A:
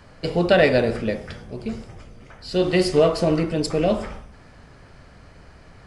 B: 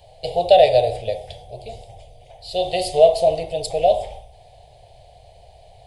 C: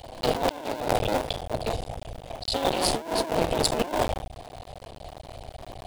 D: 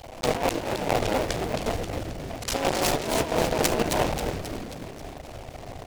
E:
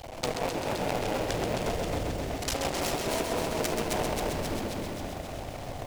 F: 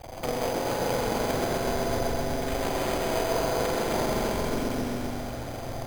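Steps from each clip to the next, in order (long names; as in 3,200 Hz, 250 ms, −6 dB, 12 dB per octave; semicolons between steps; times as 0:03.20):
drawn EQ curve 120 Hz 0 dB, 260 Hz −26 dB, 450 Hz −1 dB, 730 Hz +14 dB, 1,300 Hz −29 dB, 2,100 Hz −7 dB, 3,600 Hz +9 dB, 5,500 Hz −4 dB, 9,500 Hz +7 dB; level −2 dB
sub-harmonics by changed cycles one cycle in 2, muted; compressor whose output falls as the input rises −30 dBFS, ratio −1; level +2 dB
on a send: echo with shifted repeats 268 ms, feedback 56%, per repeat −150 Hz, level −6 dB; on the sum: short delay modulated by noise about 1,500 Hz, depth 0.067 ms
downward compressor 4 to 1, threshold −28 dBFS, peak gain reduction 9.5 dB; feedback echo at a low word length 131 ms, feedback 80%, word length 9 bits, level −6 dB
spring reverb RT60 3.3 s, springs 41/45 ms, chirp 35 ms, DRR −1 dB; bad sample-rate conversion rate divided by 8×, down filtered, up hold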